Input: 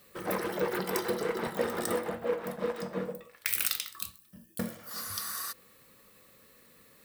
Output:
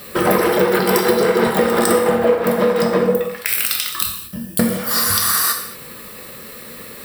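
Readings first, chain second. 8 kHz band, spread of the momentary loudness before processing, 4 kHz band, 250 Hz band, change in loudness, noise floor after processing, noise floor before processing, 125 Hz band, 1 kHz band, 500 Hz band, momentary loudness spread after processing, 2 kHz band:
+16.5 dB, 9 LU, +16.5 dB, +18.5 dB, +17.0 dB, -36 dBFS, -60 dBFS, +17.0 dB, +17.5 dB, +17.5 dB, 18 LU, +16.0 dB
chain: band-stop 6.5 kHz, Q 6.8; compression 10:1, threshold -36 dBFS, peak gain reduction 13.5 dB; gated-style reverb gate 260 ms falling, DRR 2.5 dB; loudness maximiser +23 dB; trim -1 dB

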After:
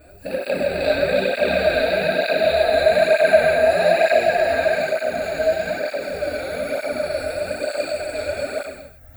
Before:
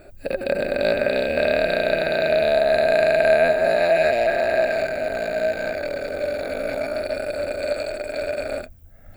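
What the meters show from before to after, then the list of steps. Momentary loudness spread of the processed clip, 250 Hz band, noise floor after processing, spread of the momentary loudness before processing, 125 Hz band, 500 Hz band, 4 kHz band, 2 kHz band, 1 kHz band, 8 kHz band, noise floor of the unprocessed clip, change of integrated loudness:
10 LU, +1.0 dB, -44 dBFS, 10 LU, +2.5 dB, +1.5 dB, +3.5 dB, +2.0 dB, +2.5 dB, no reading, -44 dBFS, +1.5 dB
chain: treble shelf 7.5 kHz +7 dB; gated-style reverb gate 350 ms falling, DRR -4.5 dB; cancelling through-zero flanger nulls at 1.1 Hz, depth 5.8 ms; trim -1 dB

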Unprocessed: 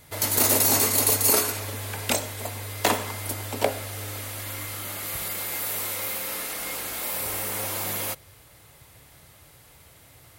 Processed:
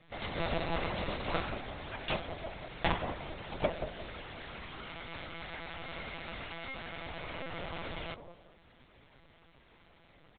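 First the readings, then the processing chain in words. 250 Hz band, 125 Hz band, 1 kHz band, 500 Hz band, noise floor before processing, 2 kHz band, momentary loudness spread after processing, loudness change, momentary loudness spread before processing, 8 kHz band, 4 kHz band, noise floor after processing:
-7.5 dB, -8.0 dB, -7.5 dB, -7.5 dB, -53 dBFS, -7.5 dB, 10 LU, -14.5 dB, 15 LU, under -40 dB, -11.5 dB, -62 dBFS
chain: comb 6 ms, depth 95%; feedback echo behind a band-pass 183 ms, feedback 30%, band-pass 430 Hz, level -6 dB; LPC vocoder at 8 kHz pitch kept; trim -9 dB

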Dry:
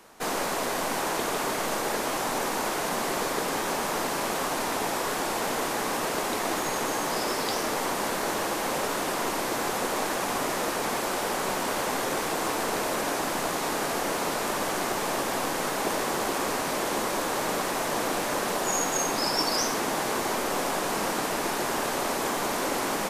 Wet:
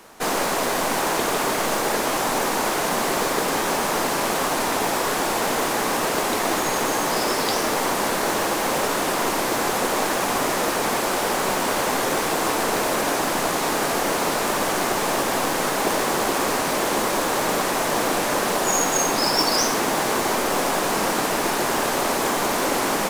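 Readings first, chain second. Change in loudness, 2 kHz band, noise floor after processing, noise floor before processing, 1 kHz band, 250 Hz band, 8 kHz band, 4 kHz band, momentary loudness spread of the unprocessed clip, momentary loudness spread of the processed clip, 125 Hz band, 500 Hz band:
+6.0 dB, +6.0 dB, -24 dBFS, -30 dBFS, +6.0 dB, +6.0 dB, +6.0 dB, +6.0 dB, 2 LU, 2 LU, +6.0 dB, +6.0 dB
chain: modulation noise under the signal 21 dB; trim +6 dB

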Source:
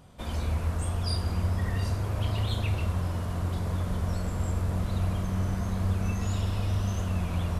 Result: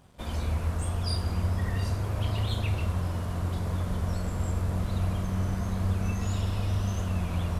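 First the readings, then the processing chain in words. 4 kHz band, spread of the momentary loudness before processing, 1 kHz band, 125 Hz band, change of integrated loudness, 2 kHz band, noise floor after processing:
0.0 dB, 2 LU, 0.0 dB, 0.0 dB, 0.0 dB, 0.0 dB, -34 dBFS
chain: crossover distortion -59.5 dBFS

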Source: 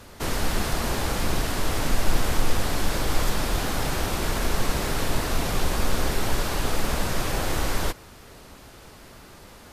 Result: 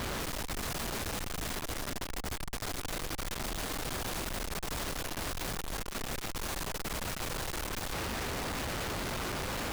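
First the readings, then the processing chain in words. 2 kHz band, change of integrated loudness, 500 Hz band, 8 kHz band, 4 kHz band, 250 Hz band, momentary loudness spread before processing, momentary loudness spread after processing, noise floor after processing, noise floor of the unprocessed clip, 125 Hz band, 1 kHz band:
-7.5 dB, -9.0 dB, -9.5 dB, -6.5 dB, -7.0 dB, -9.5 dB, 20 LU, 3 LU, -42 dBFS, -47 dBFS, -11.0 dB, -8.5 dB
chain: valve stage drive 32 dB, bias 0.45; flange 0.3 Hz, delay 4.9 ms, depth 8 ms, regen -71%; Schmitt trigger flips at -60 dBFS; trim +4.5 dB

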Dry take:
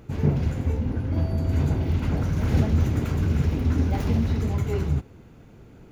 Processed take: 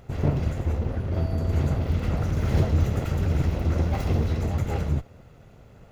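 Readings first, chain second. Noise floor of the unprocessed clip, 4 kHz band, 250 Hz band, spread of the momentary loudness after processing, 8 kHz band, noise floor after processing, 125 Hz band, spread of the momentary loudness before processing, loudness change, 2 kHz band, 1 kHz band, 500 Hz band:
-49 dBFS, 0.0 dB, -3.5 dB, 4 LU, no reading, -50 dBFS, -1.0 dB, 4 LU, -1.0 dB, 0.0 dB, +1.5 dB, +0.5 dB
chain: comb filter that takes the minimum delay 1.5 ms

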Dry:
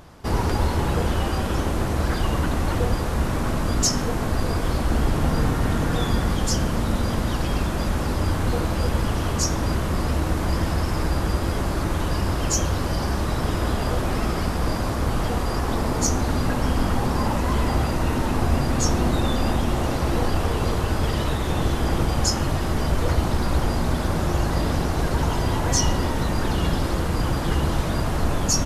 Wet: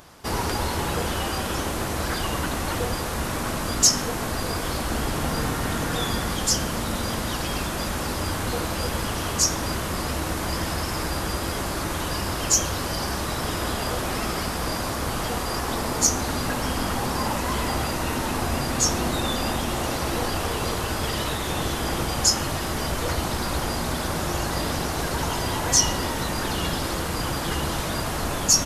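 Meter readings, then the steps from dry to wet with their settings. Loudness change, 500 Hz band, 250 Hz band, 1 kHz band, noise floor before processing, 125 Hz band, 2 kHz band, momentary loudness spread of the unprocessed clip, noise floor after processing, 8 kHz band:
-1.5 dB, -2.0 dB, -4.0 dB, 0.0 dB, -25 dBFS, -6.5 dB, +1.5 dB, 3 LU, -28 dBFS, +5.5 dB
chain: tilt EQ +2 dB/octave

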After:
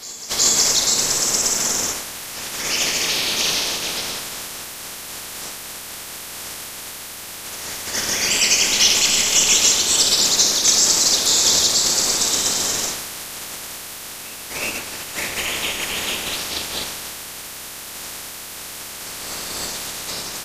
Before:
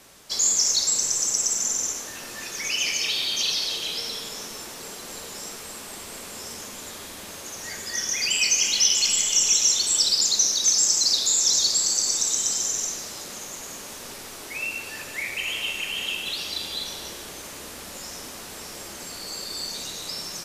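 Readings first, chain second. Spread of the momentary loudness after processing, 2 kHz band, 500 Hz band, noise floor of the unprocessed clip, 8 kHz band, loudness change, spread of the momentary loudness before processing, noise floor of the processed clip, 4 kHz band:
18 LU, +6.0 dB, +9.5 dB, -39 dBFS, +4.0 dB, +4.5 dB, 18 LU, -34 dBFS, +5.0 dB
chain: spectral peaks clipped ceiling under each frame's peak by 18 dB; reverse echo 367 ms -18 dB; trim +5 dB

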